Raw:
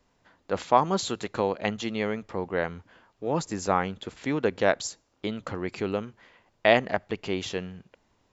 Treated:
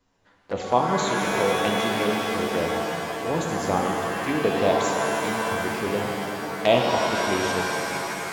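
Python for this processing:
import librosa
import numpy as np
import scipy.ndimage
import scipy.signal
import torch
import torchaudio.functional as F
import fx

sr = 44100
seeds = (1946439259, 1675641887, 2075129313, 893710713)

y = fx.env_flanger(x, sr, rest_ms=11.1, full_db=-24.5)
y = fx.rev_shimmer(y, sr, seeds[0], rt60_s=4.0, semitones=7, shimmer_db=-2, drr_db=0.0)
y = F.gain(torch.from_numpy(y), 1.5).numpy()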